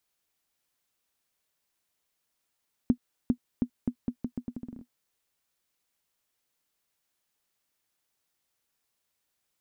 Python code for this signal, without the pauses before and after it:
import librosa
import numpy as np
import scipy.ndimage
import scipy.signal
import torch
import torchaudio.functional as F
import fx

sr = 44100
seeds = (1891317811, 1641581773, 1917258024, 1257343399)

y = fx.bouncing_ball(sr, first_gap_s=0.4, ratio=0.8, hz=244.0, decay_ms=78.0, level_db=-11.5)